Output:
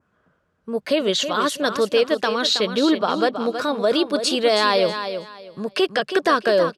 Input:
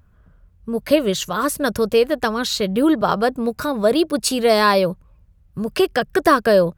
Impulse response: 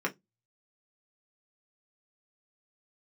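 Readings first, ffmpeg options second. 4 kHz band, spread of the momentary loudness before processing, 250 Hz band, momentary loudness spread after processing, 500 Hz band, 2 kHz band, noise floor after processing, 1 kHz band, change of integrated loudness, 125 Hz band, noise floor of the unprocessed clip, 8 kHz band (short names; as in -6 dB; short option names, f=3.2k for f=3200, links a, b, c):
+3.5 dB, 11 LU, -3.5 dB, 11 LU, -2.0 dB, -1.0 dB, -68 dBFS, -2.0 dB, -1.5 dB, -8.0 dB, -55 dBFS, -3.5 dB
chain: -filter_complex "[0:a]adynamicequalizer=threshold=0.01:dfrequency=3600:dqfactor=1.6:tfrequency=3600:tqfactor=1.6:attack=5:release=100:ratio=0.375:range=3:mode=boostabove:tftype=bell,alimiter=limit=-8.5dB:level=0:latency=1:release=49,highpass=270,lowpass=7k,asplit=2[a][b];[b]aecho=0:1:322|644|966:0.355|0.0816|0.0188[c];[a][c]amix=inputs=2:normalize=0"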